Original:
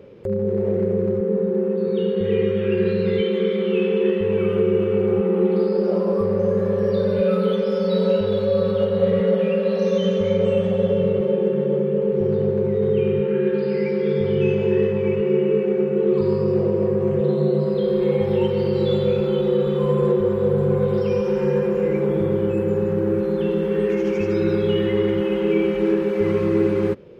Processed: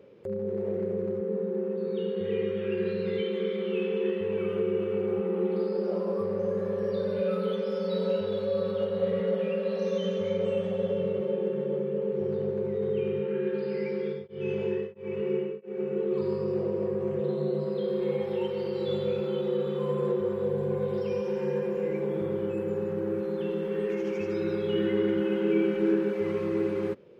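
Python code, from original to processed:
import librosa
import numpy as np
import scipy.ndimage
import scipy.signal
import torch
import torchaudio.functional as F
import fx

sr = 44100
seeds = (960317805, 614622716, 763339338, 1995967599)

y = fx.tremolo_abs(x, sr, hz=1.5, at=(13.95, 16.11))
y = fx.highpass(y, sr, hz=190.0, slope=6, at=(18.2, 18.88))
y = fx.notch(y, sr, hz=1300.0, q=6.7, at=(20.44, 22.14))
y = fx.small_body(y, sr, hz=(260.0, 1500.0), ring_ms=35, db=11, at=(24.73, 26.13))
y = fx.highpass(y, sr, hz=190.0, slope=6)
y = F.gain(torch.from_numpy(y), -8.0).numpy()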